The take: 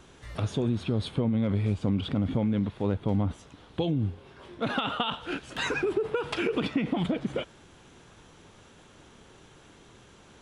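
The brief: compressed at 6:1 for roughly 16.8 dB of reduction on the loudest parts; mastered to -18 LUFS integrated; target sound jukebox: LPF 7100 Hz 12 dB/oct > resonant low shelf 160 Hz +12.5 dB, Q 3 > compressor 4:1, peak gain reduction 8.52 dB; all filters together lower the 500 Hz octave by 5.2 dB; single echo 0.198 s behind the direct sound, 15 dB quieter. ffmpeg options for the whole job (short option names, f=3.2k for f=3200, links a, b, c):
-af "equalizer=f=500:t=o:g=-4,acompressor=threshold=-42dB:ratio=6,lowpass=7.1k,lowshelf=f=160:t=q:w=3:g=12.5,aecho=1:1:198:0.178,acompressor=threshold=-30dB:ratio=4,volume=20dB"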